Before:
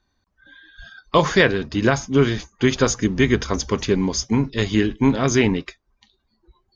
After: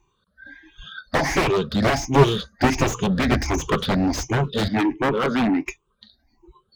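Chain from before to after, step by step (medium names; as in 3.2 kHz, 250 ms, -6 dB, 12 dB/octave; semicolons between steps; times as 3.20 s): drifting ripple filter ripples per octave 0.7, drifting +1.4 Hz, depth 23 dB; 4.68–5.66 s: three-band isolator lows -23 dB, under 160 Hz, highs -19 dB, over 2.1 kHz; Chebyshev shaper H 5 -23 dB, 7 -7 dB, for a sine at 3 dBFS; slew-rate limiter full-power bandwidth 340 Hz; trim -5 dB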